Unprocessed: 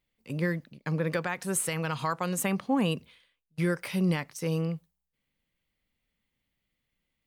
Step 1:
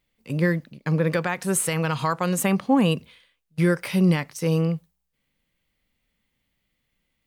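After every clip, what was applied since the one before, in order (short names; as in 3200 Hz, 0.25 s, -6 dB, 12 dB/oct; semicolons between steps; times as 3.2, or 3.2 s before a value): harmonic-percussive split percussive -3 dB; gain +7.5 dB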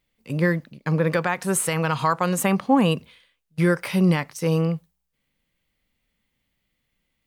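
dynamic EQ 1000 Hz, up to +4 dB, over -38 dBFS, Q 0.87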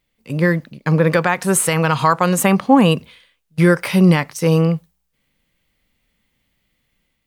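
AGC gain up to 4 dB; gain +3 dB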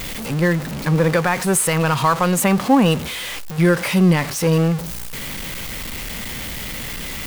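zero-crossing step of -19 dBFS; gain -3.5 dB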